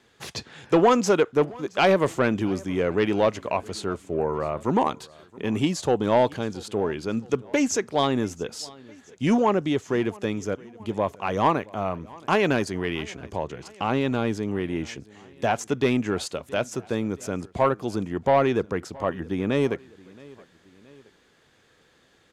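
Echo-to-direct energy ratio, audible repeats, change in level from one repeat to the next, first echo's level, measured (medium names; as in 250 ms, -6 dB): -22.0 dB, 2, -5.0 dB, -23.0 dB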